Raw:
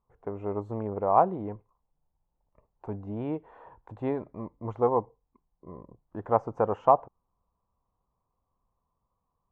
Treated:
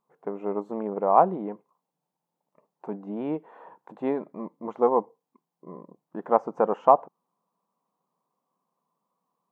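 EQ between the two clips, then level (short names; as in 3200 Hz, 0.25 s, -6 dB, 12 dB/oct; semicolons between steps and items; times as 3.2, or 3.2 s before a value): brick-wall FIR high-pass 150 Hz; +3.0 dB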